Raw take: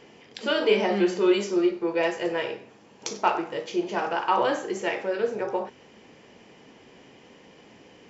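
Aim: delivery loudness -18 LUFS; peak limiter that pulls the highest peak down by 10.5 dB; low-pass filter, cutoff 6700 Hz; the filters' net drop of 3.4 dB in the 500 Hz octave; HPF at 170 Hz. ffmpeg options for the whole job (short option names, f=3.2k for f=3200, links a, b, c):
-af "highpass=170,lowpass=6.7k,equalizer=f=500:t=o:g=-4.5,volume=13dB,alimiter=limit=-6.5dB:level=0:latency=1"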